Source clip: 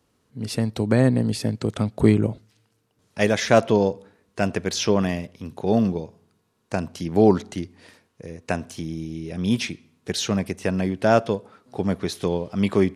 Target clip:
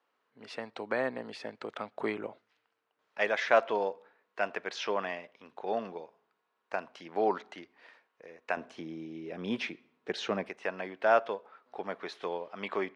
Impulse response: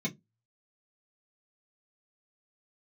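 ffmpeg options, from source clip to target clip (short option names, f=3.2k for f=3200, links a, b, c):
-af "asetnsamples=n=441:p=0,asendcmd='8.57 highpass f 410;10.49 highpass f 730',highpass=760,lowpass=2.3k,volume=-2dB"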